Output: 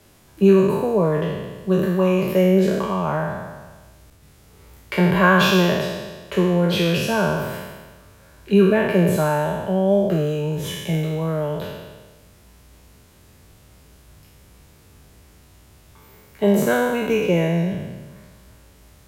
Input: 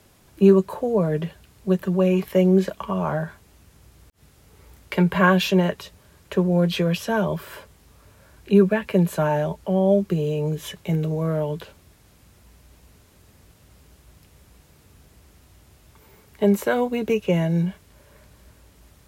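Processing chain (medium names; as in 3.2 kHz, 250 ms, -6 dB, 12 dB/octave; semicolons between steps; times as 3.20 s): spectral sustain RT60 1.38 s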